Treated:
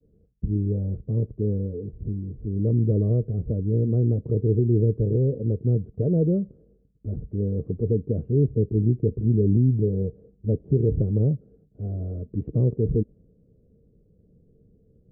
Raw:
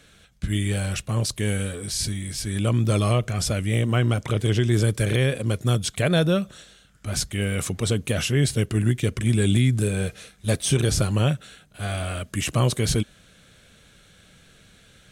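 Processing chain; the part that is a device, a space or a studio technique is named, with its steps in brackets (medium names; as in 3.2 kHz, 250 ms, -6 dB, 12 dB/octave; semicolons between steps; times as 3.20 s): expander -50 dBFS; under water (low-pass 410 Hz 24 dB/octave; peaking EQ 450 Hz +10 dB 0.27 oct)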